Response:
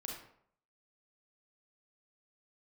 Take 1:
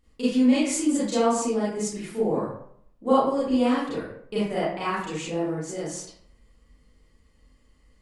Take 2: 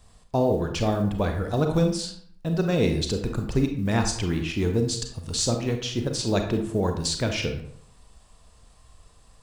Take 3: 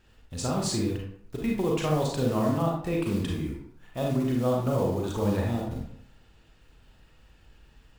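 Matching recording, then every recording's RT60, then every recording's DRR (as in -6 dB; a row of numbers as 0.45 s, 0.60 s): 3; 0.65 s, 0.65 s, 0.65 s; -10.5 dB, 4.5 dB, -1.5 dB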